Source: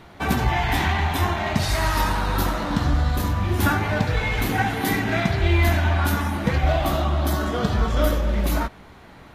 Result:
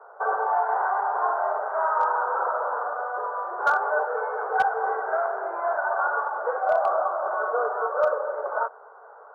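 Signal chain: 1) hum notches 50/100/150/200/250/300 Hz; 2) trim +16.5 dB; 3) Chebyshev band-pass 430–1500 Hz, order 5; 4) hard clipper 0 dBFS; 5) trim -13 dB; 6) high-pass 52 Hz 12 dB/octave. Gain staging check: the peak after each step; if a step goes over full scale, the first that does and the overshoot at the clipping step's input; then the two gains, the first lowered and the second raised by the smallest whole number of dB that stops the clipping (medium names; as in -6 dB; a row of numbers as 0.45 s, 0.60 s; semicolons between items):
-8.5 dBFS, +8.0 dBFS, +3.5 dBFS, 0.0 dBFS, -13.0 dBFS, -12.0 dBFS; step 2, 3.5 dB; step 2 +12.5 dB, step 5 -9 dB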